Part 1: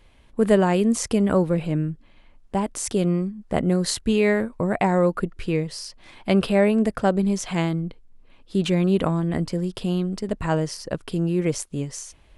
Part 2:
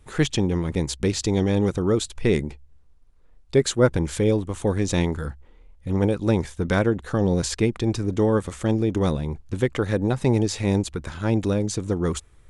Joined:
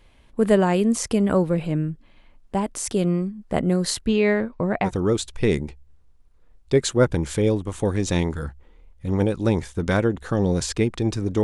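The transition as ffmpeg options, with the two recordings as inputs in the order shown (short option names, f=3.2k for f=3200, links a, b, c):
-filter_complex "[0:a]asettb=1/sr,asplit=3[a][b][c];[a]atrim=end=4.064[d];[b]atrim=start=4.06:end=4.91,asetpts=PTS-STARTPTS,afade=t=in:d=0.004:c=qsin,afade=t=out:st=0.846:d=0.004:c=qsin,lowpass=f=5.7k:w=0.5412,lowpass=f=5.7k:w=1.3066[e];[c]atrim=start=4.906[f];[d][e]acrossfade=d=0.004:c1=hsin:c2=qsin[g];[g][f]acrossfade=d=0.004:c1=qsin:c2=hsin,apad=whole_dur=11.43,atrim=end=11.43,atrim=end=4.91,asetpts=PTS-STARTPTS[h];[1:a]atrim=start=1.63:end=8.25,asetpts=PTS-STARTPTS[i];[h][i]acrossfade=d=0.1:c1=tri:c2=tri"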